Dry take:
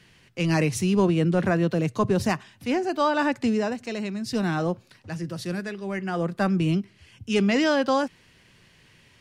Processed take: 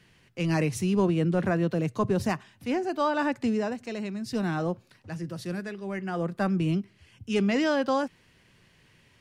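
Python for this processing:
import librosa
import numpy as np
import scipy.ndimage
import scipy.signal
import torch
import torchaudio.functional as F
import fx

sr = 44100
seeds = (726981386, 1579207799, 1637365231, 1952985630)

y = fx.peak_eq(x, sr, hz=4800.0, db=-3.0, octaves=2.4)
y = F.gain(torch.from_numpy(y), -3.0).numpy()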